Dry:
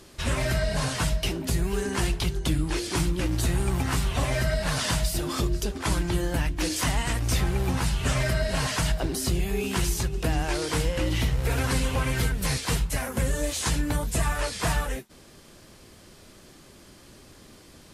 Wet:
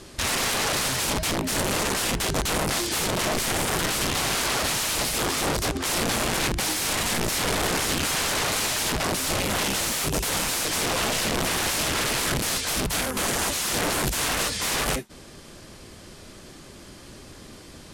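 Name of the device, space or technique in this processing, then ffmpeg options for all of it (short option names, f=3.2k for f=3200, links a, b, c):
overflowing digital effects unit: -filter_complex "[0:a]asettb=1/sr,asplit=3[a][b][c];[a]atrim=end=9.924[d];[b]atrim=start=9.92:end=10.65,asetpts=PTS-STARTPTS,afade=t=in:d=0.004:c=qsin,afade=t=out:st=0.726:d=0.004:c=qsin,aemphasis=mode=production:type=50fm[e];[c]atrim=start=10.646[f];[d][e]acrossfade=d=0.004:c1=hsin:c2=qsin[g];[g][f]acrossfade=d=0.004:c1=qsin:c2=hsin,aeval=exprs='(mod(18.8*val(0)+1,2)-1)/18.8':c=same,lowpass=12k,volume=6dB"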